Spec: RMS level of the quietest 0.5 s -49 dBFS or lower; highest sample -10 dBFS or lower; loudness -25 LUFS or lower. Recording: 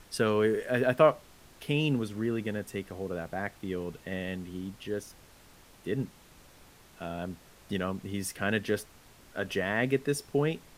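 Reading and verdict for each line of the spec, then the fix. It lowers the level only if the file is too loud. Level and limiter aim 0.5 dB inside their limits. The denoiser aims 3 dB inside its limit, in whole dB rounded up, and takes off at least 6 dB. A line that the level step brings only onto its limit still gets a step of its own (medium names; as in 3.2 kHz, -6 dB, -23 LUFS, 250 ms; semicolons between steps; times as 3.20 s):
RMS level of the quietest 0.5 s -56 dBFS: pass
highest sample -9.0 dBFS: fail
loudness -31.5 LUFS: pass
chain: peak limiter -10.5 dBFS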